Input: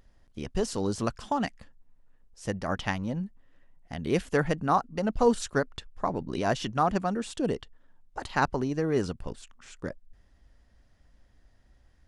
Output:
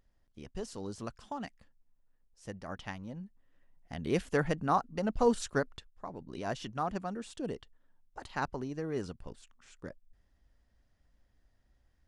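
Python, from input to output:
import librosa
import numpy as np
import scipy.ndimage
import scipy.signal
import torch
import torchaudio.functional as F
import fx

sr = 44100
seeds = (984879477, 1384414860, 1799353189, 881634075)

y = fx.gain(x, sr, db=fx.line((3.18, -11.5), (3.98, -4.0), (5.71, -4.0), (5.93, -15.5), (6.5, -9.0)))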